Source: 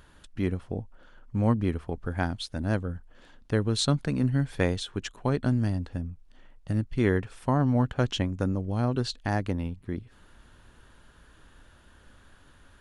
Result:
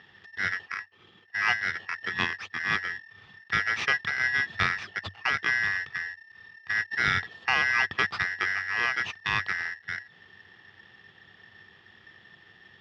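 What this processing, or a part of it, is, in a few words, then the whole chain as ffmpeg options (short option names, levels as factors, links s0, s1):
ring modulator pedal into a guitar cabinet: -filter_complex "[0:a]asettb=1/sr,asplit=3[s0][s1][s2];[s0]atrim=end=0.664[s3];[s1]atrim=start=0.66:end=1.8,asetpts=PTS-STARTPTS,afade=t=in:d=0.004:c=qsin,afade=t=out:st=1.136:d=0.004:c=qsin,highpass=f=88:p=1[s4];[s2]atrim=start=1.796[s5];[s3][s4]acrossfade=d=0.004:c1=hsin:c2=qsin[s6];[s6][s5]acrossfade=d=0.004:c1=qsin:c2=hsin,aeval=exprs='val(0)*sgn(sin(2*PI*1800*n/s))':c=same,highpass=94,equalizer=f=95:t=q:w=4:g=10,equalizer=f=280:t=q:w=4:g=-9,equalizer=f=580:t=q:w=4:g=-9,equalizer=f=960:t=q:w=4:g=-4,equalizer=f=1500:t=q:w=4:g=-8,equalizer=f=2200:t=q:w=4:g=-9,lowpass=f=3400:w=0.5412,lowpass=f=3400:w=1.3066,volume=2"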